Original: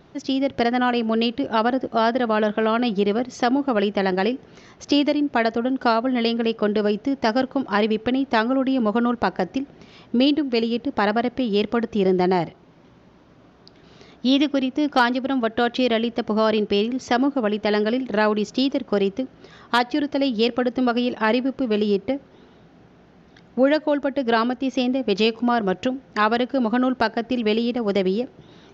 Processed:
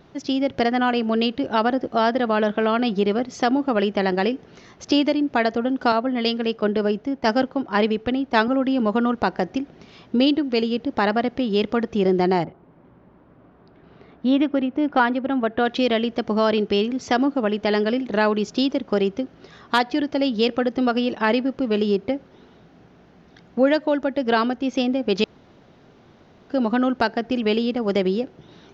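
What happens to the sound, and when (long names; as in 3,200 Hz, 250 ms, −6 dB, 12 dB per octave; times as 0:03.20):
0:05.92–0:08.48: multiband upward and downward expander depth 70%
0:12.43–0:15.64: low-pass filter 1,400 Hz → 2,600 Hz
0:25.24–0:26.50: fill with room tone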